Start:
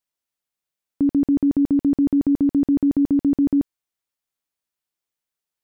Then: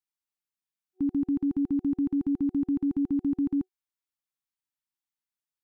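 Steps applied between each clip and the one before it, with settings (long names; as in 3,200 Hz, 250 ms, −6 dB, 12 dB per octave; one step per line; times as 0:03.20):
brick-wall band-stop 370–750 Hz
level −8.5 dB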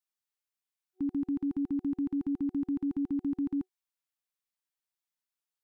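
low-shelf EQ 440 Hz −6.5 dB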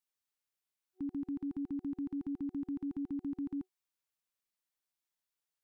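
brickwall limiter −33 dBFS, peak gain reduction 7 dB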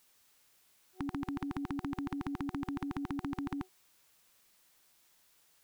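every bin compressed towards the loudest bin 2 to 1
level +9.5 dB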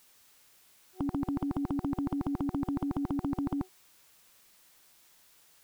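slew-rate limiting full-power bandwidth 14 Hz
level +6 dB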